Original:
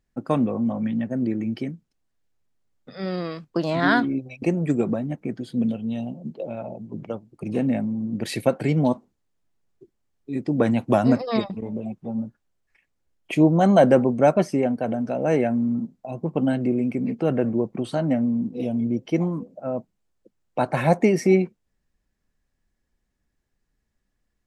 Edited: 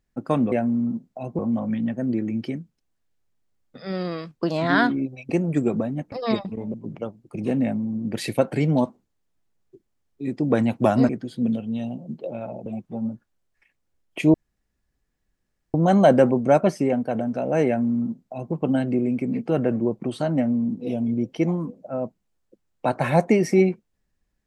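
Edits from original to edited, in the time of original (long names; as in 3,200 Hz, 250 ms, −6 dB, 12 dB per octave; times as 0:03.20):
0:05.25–0:06.82: swap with 0:11.17–0:11.79
0:13.47: splice in room tone 1.40 s
0:15.40–0:16.27: duplicate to 0:00.52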